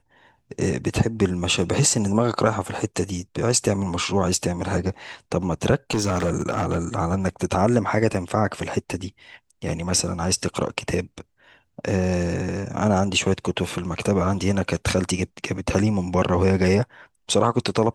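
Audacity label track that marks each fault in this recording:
5.900000	6.790000	clipping −17 dBFS

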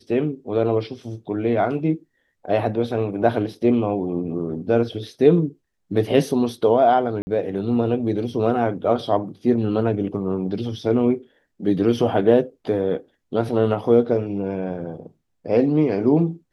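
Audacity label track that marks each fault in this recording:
7.220000	7.270000	drop-out 50 ms

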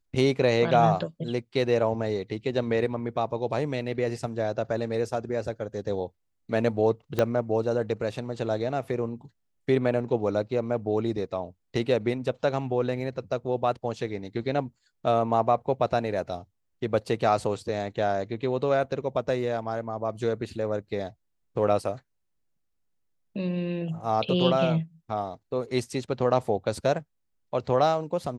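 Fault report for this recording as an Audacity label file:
7.190000	7.190000	click −11 dBFS

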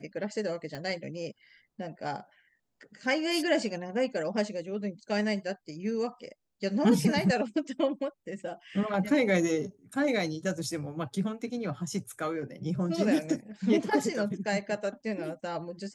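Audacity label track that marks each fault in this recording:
0.750000	0.750000	click −25 dBFS

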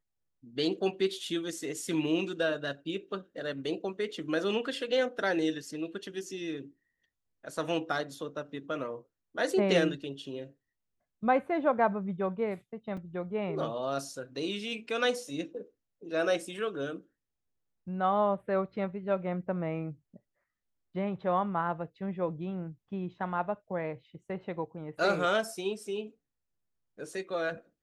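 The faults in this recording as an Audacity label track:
12.970000	12.970000	drop-out 4.5 ms

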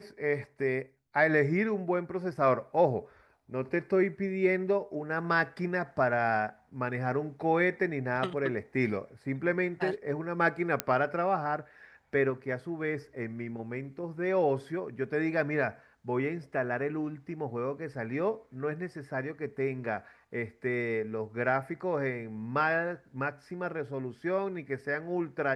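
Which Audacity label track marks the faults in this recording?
10.800000	10.800000	click −10 dBFS

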